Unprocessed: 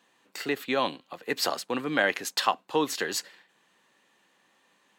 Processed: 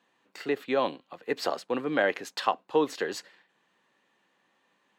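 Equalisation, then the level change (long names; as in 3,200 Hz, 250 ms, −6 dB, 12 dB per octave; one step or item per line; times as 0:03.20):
low-pass filter 3,200 Hz 6 dB per octave
dynamic equaliser 480 Hz, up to +6 dB, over −38 dBFS, Q 1
−3.0 dB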